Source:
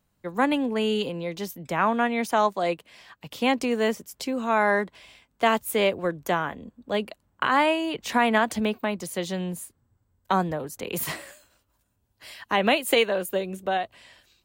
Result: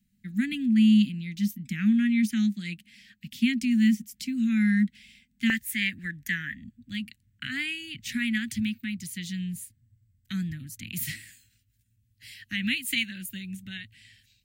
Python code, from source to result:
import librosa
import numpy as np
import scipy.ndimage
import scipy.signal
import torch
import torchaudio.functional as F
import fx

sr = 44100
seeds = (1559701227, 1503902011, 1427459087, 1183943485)

y = scipy.signal.sosfilt(scipy.signal.ellip(3, 1.0, 40, [240.0, 1900.0], 'bandstop', fs=sr, output='sos'), x)
y = fx.peak_eq(y, sr, hz=fx.steps((0.0, 210.0), (5.5, 1800.0), (6.64, 110.0)), db=14.0, octaves=0.42)
y = F.gain(torch.from_numpy(y), -2.0).numpy()